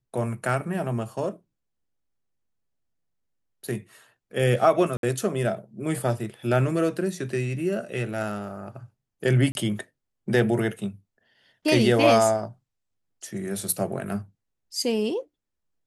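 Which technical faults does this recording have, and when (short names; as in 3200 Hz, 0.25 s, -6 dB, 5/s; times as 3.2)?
4.97–5.03 gap 62 ms
9.52–9.55 gap 31 ms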